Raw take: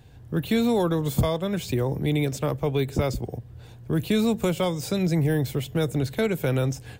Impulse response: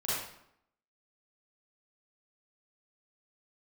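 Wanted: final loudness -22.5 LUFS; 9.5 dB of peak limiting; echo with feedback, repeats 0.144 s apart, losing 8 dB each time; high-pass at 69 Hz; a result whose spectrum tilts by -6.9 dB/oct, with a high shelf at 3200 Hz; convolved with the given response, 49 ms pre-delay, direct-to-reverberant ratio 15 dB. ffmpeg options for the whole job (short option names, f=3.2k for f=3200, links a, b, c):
-filter_complex "[0:a]highpass=69,highshelf=f=3.2k:g=-4.5,alimiter=limit=-20.5dB:level=0:latency=1,aecho=1:1:144|288|432|576|720:0.398|0.159|0.0637|0.0255|0.0102,asplit=2[a][b];[1:a]atrim=start_sample=2205,adelay=49[c];[b][c]afir=irnorm=-1:irlink=0,volume=-22dB[d];[a][d]amix=inputs=2:normalize=0,volume=6.5dB"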